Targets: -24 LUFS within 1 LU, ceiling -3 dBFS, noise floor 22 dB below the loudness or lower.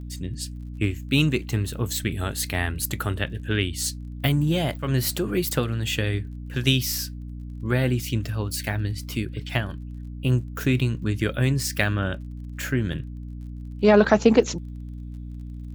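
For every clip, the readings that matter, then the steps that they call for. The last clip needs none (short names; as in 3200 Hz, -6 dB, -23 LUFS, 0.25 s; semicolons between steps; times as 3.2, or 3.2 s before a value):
ticks 29/s; hum 60 Hz; harmonics up to 300 Hz; hum level -33 dBFS; loudness -24.5 LUFS; peak -2.0 dBFS; loudness target -24.0 LUFS
-> de-click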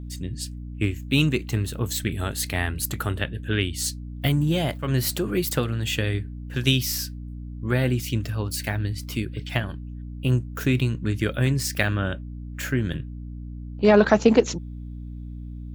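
ticks 1.2/s; hum 60 Hz; harmonics up to 300 Hz; hum level -33 dBFS
-> de-hum 60 Hz, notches 5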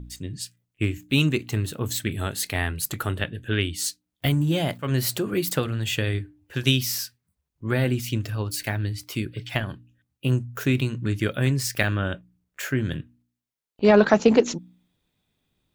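hum none; loudness -25.0 LUFS; peak -2.5 dBFS; loudness target -24.0 LUFS
-> gain +1 dB; limiter -3 dBFS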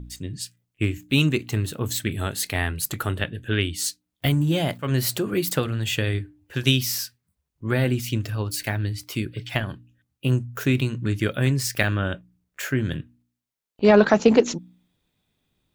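loudness -24.0 LUFS; peak -3.0 dBFS; noise floor -81 dBFS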